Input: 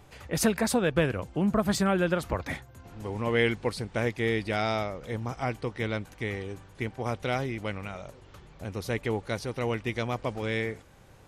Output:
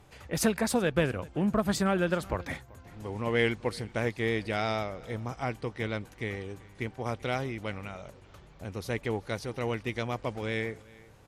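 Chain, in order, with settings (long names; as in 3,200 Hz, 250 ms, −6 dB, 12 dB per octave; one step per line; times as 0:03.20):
pitch vibrato 6.3 Hz 19 cents
on a send: single-tap delay 385 ms −22.5 dB
on the sum: harmonic generator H 7 −35 dB, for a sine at −12 dBFS
level −1.5 dB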